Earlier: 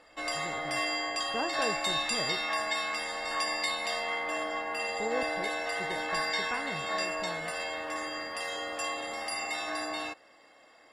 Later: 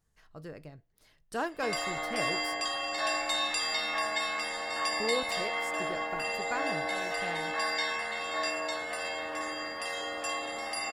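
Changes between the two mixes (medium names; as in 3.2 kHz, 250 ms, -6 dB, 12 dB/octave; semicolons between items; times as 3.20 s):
speech: remove distance through air 480 m; background: entry +1.45 s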